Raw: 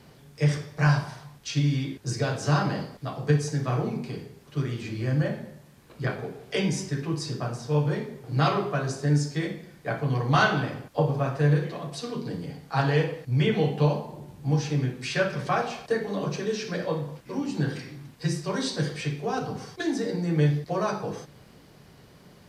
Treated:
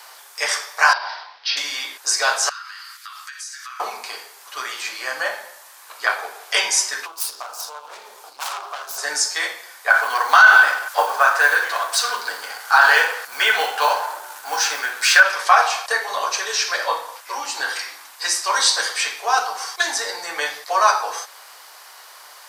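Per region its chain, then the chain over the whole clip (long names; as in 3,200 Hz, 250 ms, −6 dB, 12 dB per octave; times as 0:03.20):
0:00.93–0:01.57: parametric band 1,200 Hz −6 dB 0.35 octaves + downward compressor 4 to 1, threshold −29 dBFS + Butterworth low-pass 5,200 Hz 72 dB per octave
0:02.49–0:03.80: elliptic high-pass filter 1,300 Hz, stop band 80 dB + downward compressor, threshold −49 dBFS
0:07.06–0:08.98: phase distortion by the signal itself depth 0.52 ms + parametric band 1,900 Hz −10 dB 0.49 octaves + downward compressor, threshold −37 dBFS
0:09.90–0:15.23: mu-law and A-law mismatch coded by mu + parametric band 1,500 Hz +11.5 dB 0.25 octaves
whole clip: high-pass filter 940 Hz 24 dB per octave; parametric band 2,600 Hz −8.5 dB 2 octaves; boost into a limiter +22.5 dB; level −1 dB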